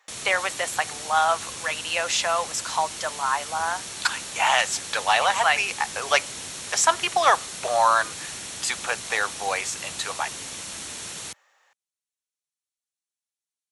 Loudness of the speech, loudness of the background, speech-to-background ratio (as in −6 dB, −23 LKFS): −24.0 LKFS, −33.0 LKFS, 9.0 dB